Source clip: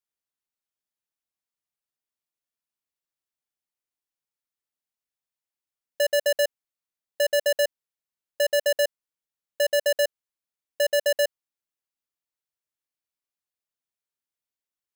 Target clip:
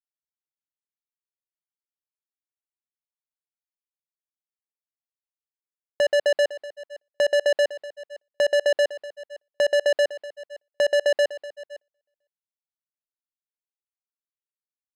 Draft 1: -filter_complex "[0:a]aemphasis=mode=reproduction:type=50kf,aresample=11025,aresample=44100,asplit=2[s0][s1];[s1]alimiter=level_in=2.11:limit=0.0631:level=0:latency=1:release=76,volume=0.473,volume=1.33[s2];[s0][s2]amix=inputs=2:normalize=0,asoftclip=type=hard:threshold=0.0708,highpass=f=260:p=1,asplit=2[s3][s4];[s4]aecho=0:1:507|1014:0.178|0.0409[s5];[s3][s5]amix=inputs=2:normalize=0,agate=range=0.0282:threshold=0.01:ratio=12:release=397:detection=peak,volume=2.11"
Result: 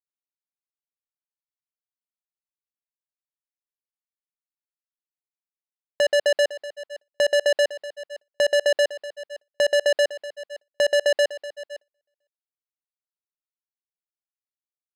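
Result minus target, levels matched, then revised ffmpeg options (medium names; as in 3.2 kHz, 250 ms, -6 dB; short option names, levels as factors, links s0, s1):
4 kHz band +2.5 dB
-filter_complex "[0:a]aemphasis=mode=reproduction:type=50kf,aresample=11025,aresample=44100,asplit=2[s0][s1];[s1]alimiter=level_in=2.11:limit=0.0631:level=0:latency=1:release=76,volume=0.473,volume=1.33[s2];[s0][s2]amix=inputs=2:normalize=0,asoftclip=type=hard:threshold=0.0708,highpass=f=260:p=1,highshelf=f=2500:g=-5.5,asplit=2[s3][s4];[s4]aecho=0:1:507|1014:0.178|0.0409[s5];[s3][s5]amix=inputs=2:normalize=0,agate=range=0.0282:threshold=0.01:ratio=12:release=397:detection=peak,volume=2.11"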